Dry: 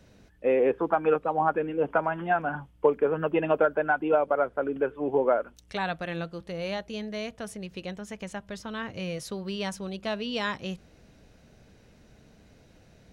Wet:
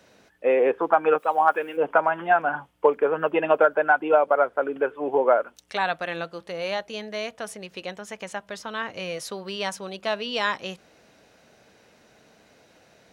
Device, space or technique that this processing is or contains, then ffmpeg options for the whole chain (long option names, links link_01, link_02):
filter by subtraction: -filter_complex "[0:a]asplit=3[link_01][link_02][link_03];[link_01]afade=type=out:start_time=1.18:duration=0.02[link_04];[link_02]aemphasis=mode=production:type=riaa,afade=type=in:start_time=1.18:duration=0.02,afade=type=out:start_time=1.76:duration=0.02[link_05];[link_03]afade=type=in:start_time=1.76:duration=0.02[link_06];[link_04][link_05][link_06]amix=inputs=3:normalize=0,asplit=2[link_07][link_08];[link_08]lowpass=820,volume=-1[link_09];[link_07][link_09]amix=inputs=2:normalize=0,volume=4.5dB"